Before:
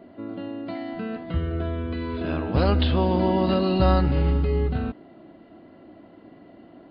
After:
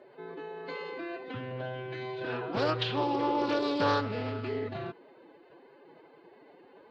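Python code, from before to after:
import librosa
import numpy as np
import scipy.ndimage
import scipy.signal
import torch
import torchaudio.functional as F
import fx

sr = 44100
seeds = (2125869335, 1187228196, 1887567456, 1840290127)

y = fx.highpass(x, sr, hz=580.0, slope=6)
y = fx.pitch_keep_formants(y, sr, semitones=7.5)
y = fx.doppler_dist(y, sr, depth_ms=0.21)
y = y * librosa.db_to_amplitude(-1.5)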